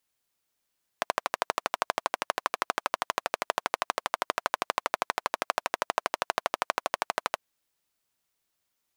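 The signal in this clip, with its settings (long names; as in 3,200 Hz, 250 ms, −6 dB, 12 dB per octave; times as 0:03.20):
pulse-train model of a single-cylinder engine, steady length 6.35 s, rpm 1,500, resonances 700/1,000 Hz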